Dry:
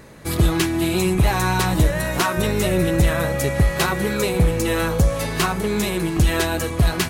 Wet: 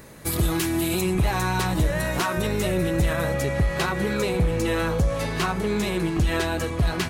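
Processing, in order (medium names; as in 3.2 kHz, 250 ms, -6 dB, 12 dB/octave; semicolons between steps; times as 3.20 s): treble shelf 8.7 kHz +11 dB, from 1.01 s -3 dB, from 3.34 s -11 dB; peak limiter -13 dBFS, peak gain reduction 6.5 dB; trim -2 dB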